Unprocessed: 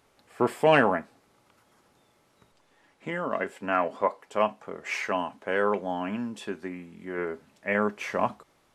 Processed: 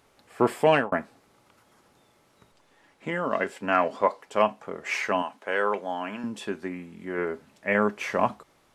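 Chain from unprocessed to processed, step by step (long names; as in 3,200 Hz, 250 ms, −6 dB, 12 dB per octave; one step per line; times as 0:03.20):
0:00.52–0:00.92: fade out equal-power
0:03.23–0:04.42: dynamic equaliser 5,000 Hz, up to +6 dB, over −50 dBFS, Q 0.98
0:05.22–0:06.24: high-pass filter 560 Hz 6 dB per octave
level +2.5 dB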